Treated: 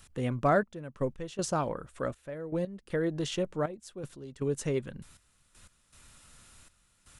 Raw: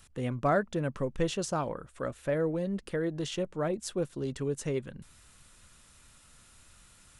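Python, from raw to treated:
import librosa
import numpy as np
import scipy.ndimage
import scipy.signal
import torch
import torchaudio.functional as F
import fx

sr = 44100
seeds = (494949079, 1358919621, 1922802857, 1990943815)

y = fx.step_gate(x, sr, bpm=119, pattern='xxxxx...x..x', floor_db=-12.0, edge_ms=4.5)
y = y * 10.0 ** (1.5 / 20.0)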